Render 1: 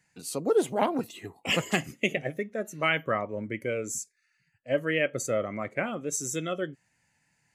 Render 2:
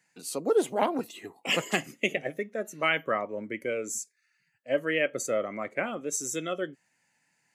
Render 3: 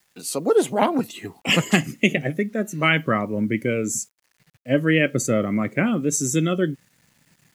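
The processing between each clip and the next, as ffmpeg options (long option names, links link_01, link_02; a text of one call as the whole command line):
ffmpeg -i in.wav -af "highpass=220" out.wav
ffmpeg -i in.wav -af "asubboost=boost=9:cutoff=210,acrusher=bits=10:mix=0:aa=0.000001,volume=7.5dB" out.wav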